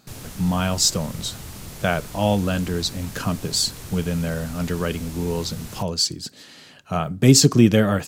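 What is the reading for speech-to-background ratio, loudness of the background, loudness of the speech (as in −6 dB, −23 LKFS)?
16.0 dB, −37.5 LKFS, −21.5 LKFS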